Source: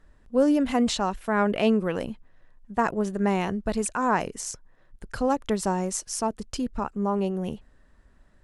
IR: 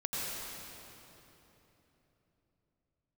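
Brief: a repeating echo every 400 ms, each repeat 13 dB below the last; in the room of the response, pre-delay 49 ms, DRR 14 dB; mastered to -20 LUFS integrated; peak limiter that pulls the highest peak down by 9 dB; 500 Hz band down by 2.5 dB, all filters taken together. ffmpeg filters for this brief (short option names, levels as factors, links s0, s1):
-filter_complex "[0:a]equalizer=f=500:t=o:g=-3,alimiter=limit=0.1:level=0:latency=1,aecho=1:1:400|800|1200:0.224|0.0493|0.0108,asplit=2[s0][s1];[1:a]atrim=start_sample=2205,adelay=49[s2];[s1][s2]afir=irnorm=-1:irlink=0,volume=0.106[s3];[s0][s3]amix=inputs=2:normalize=0,volume=3.35"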